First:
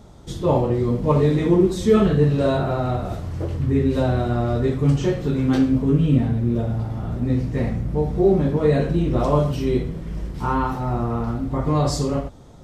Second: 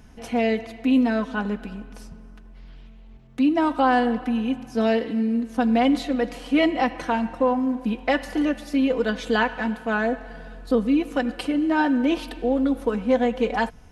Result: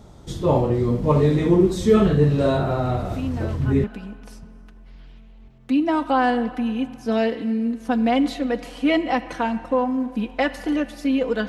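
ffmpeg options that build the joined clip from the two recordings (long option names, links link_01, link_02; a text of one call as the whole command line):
ffmpeg -i cue0.wav -i cue1.wav -filter_complex "[1:a]asplit=2[link_01][link_02];[0:a]apad=whole_dur=11.48,atrim=end=11.48,atrim=end=3.842[link_03];[link_02]atrim=start=1.528:end=9.17[link_04];[link_01]atrim=start=0.59:end=1.53,asetpts=PTS-STARTPTS,volume=-10dB,afade=type=in:duration=0.004:curve=hsin,afade=type=out:start_time=0.936:duration=0.004:curve=hsin,adelay=2900[link_05];[link_03][link_04]acrossfade=duration=0.004:curve1=hsin:curve2=hsin[link_06];[link_06][link_05]amix=inputs=2:normalize=0" out.wav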